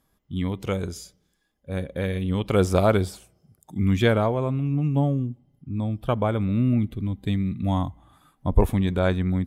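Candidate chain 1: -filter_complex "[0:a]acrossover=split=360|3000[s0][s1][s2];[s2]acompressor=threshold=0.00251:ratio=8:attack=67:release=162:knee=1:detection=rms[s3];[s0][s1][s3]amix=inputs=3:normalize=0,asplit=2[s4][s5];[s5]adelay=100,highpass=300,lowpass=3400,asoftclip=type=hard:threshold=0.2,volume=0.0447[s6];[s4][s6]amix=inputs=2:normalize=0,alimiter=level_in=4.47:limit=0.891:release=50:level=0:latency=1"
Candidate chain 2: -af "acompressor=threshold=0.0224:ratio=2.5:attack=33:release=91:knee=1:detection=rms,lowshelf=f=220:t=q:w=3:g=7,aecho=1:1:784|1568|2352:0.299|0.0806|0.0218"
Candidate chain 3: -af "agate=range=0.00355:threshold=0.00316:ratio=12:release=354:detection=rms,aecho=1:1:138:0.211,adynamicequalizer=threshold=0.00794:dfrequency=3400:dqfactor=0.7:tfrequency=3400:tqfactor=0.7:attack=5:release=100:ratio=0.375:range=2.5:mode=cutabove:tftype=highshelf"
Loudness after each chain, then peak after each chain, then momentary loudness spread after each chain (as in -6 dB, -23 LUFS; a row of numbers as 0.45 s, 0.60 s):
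-13.5 LUFS, -25.0 LUFS, -24.5 LUFS; -1.0 dBFS, -8.5 dBFS, -5.5 dBFS; 10 LU, 11 LU, 13 LU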